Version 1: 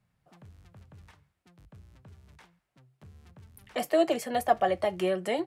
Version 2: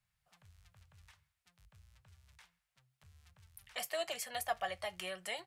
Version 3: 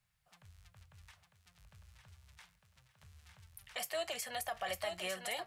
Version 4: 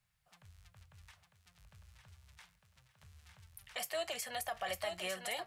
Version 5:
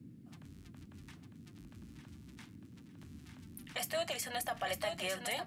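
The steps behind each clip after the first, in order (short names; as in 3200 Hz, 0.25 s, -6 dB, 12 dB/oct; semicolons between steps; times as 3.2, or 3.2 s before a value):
passive tone stack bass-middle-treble 10-0-10
limiter -32 dBFS, peak gain reduction 10 dB; thinning echo 0.903 s, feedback 35%, high-pass 150 Hz, level -6 dB; gain +3 dB
nothing audible
band noise 92–290 Hz -56 dBFS; gain +2 dB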